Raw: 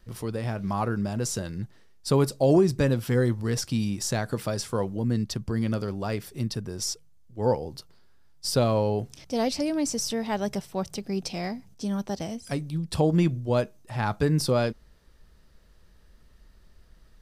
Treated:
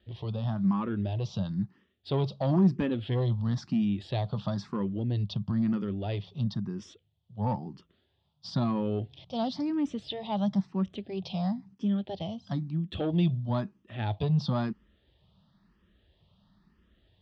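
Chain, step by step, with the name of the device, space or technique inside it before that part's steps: barber-pole phaser into a guitar amplifier (endless phaser +1 Hz; soft clip -20.5 dBFS, distortion -16 dB; speaker cabinet 85–3700 Hz, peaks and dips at 100 Hz +6 dB, 190 Hz +8 dB, 470 Hz -7 dB, 1500 Hz -7 dB, 2200 Hz -7 dB, 3400 Hz +8 dB)

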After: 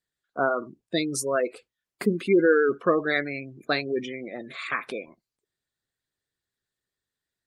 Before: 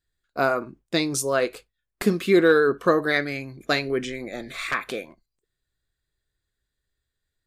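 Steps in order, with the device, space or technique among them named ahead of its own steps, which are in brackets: noise-suppressed video call (HPF 130 Hz 12 dB/oct; spectral gate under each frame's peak -20 dB strong; gain -2 dB; Opus 32 kbps 48000 Hz)

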